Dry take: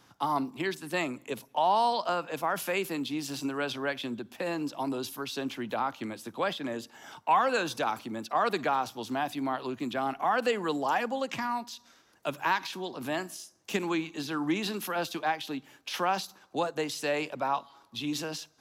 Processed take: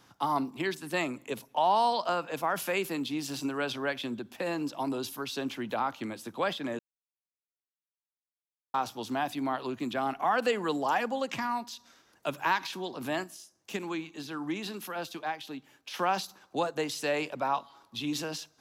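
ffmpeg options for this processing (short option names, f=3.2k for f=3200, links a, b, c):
-filter_complex "[0:a]asplit=5[a][b][c][d][e];[a]atrim=end=6.79,asetpts=PTS-STARTPTS,afade=t=out:st=6.786:d=0.004:c=hsin[f];[b]atrim=start=6.79:end=8.74,asetpts=PTS-STARTPTS,volume=0[g];[c]atrim=start=8.74:end=13.242,asetpts=PTS-STARTPTS,afade=t=in:d=0.004:c=hsin[h];[d]atrim=start=13.238:end=15.992,asetpts=PTS-STARTPTS,volume=-5dB[i];[e]atrim=start=15.988[j];[f][g][h]concat=n=3:v=0:a=1[k];[k][i]acrossfade=d=0.004:c1=hsin:c2=hsin[l];[l][j]acrossfade=d=0.004:c1=hsin:c2=hsin"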